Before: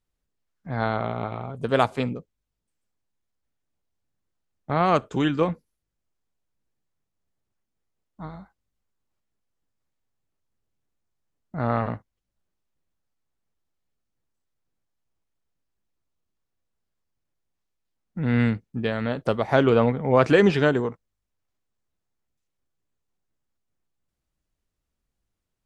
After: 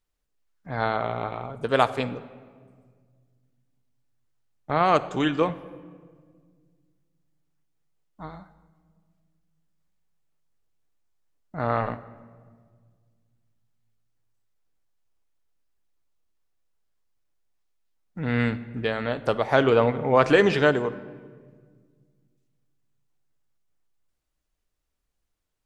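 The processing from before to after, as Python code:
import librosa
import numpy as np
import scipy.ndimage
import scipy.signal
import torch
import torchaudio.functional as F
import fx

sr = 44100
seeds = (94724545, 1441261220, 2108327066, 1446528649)

y = fx.peak_eq(x, sr, hz=150.0, db=-7.0, octaves=2.1)
y = fx.room_shoebox(y, sr, seeds[0], volume_m3=2300.0, walls='mixed', distance_m=0.43)
y = y * librosa.db_to_amplitude(1.5)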